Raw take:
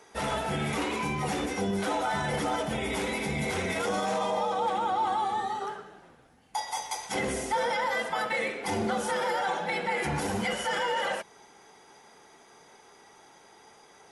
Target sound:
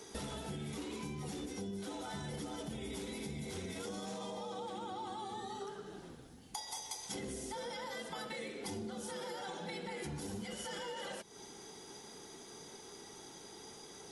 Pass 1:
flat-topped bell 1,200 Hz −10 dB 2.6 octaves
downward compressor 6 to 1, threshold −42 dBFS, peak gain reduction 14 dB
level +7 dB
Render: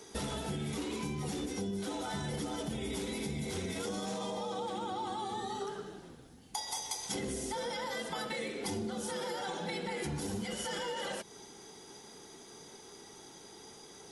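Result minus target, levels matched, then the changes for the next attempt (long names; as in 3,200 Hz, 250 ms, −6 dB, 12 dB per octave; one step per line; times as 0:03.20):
downward compressor: peak gain reduction −5.5 dB
change: downward compressor 6 to 1, threshold −48.5 dBFS, peak gain reduction 19.5 dB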